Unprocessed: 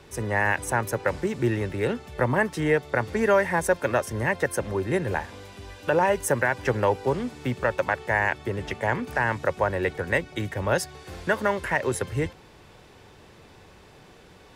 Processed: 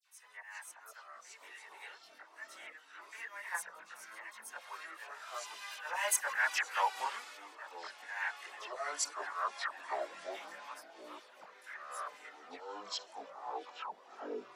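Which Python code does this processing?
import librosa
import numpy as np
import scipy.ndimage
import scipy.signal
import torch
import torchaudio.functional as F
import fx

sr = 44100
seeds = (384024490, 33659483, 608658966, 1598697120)

y = fx.doppler_pass(x, sr, speed_mps=7, closest_m=2.4, pass_at_s=6.27)
y = scipy.signal.sosfilt(scipy.signal.butter(4, 1000.0, 'highpass', fs=sr, output='sos'), y)
y = fx.auto_swell(y, sr, attack_ms=271.0)
y = fx.dispersion(y, sr, late='lows', ms=63.0, hz=2700.0)
y = fx.echo_pitch(y, sr, ms=341, semitones=-6, count=3, db_per_echo=-6.0)
y = fx.chorus_voices(y, sr, voices=4, hz=0.34, base_ms=21, depth_ms=3.5, mix_pct=55)
y = F.gain(torch.from_numpy(y), 11.5).numpy()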